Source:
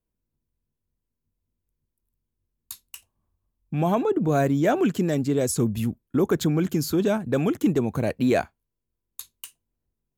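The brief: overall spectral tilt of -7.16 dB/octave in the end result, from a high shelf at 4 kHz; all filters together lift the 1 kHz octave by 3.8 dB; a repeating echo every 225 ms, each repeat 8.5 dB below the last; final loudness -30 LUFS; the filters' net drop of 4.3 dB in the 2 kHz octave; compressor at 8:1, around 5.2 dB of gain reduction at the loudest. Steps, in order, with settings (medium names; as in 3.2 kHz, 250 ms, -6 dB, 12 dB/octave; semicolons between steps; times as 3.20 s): peaking EQ 1 kHz +8 dB; peaking EQ 2 kHz -8.5 dB; treble shelf 4 kHz -6 dB; compression 8:1, threshold -21 dBFS; feedback delay 225 ms, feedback 38%, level -8.5 dB; trim -3.5 dB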